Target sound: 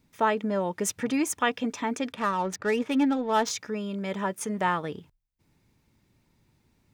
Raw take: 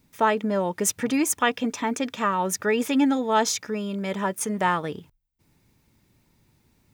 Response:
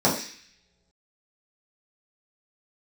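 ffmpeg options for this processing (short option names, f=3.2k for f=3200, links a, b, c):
-filter_complex "[0:a]highshelf=f=9.2k:g=-8,asettb=1/sr,asplit=3[a][b][c];[a]atrim=end=2.124[d];[b]atrim=start=2.12:end=3.51,asetpts=PTS-STARTPTS,afade=t=in:d=0.004:c=qsin,afade=t=out:st=1.386:d=0.004:c=qsin,adynamicsmooth=sensitivity=6:basefreq=1.7k[e];[c]atrim=start=3.506[f];[d][e]acrossfade=d=0.004:c1=hsin:c2=qsin[g];[g][f]acrossfade=d=0.004:c1=qsin:c2=hsin,volume=-3dB"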